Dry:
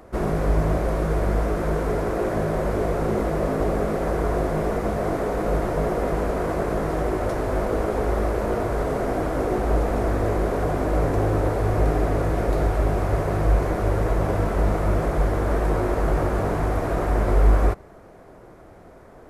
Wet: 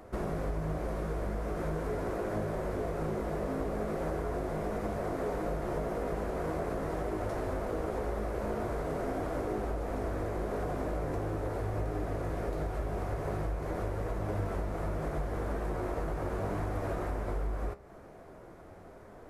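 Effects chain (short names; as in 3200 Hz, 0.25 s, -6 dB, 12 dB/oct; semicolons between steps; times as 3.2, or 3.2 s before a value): compressor, threshold -26 dBFS, peak gain reduction 14 dB; flange 0.42 Hz, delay 9.4 ms, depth 5.8 ms, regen +70%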